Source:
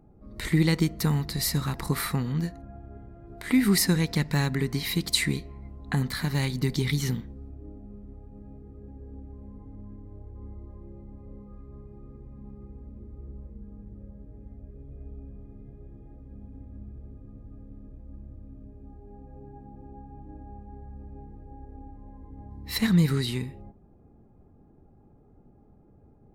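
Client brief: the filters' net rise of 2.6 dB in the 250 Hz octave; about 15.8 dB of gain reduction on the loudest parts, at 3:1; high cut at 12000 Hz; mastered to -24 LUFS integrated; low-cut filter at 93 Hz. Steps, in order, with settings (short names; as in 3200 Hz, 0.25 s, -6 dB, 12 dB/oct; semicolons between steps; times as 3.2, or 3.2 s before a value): HPF 93 Hz; LPF 12000 Hz; bell 250 Hz +4 dB; compressor 3:1, threshold -37 dBFS; gain +17.5 dB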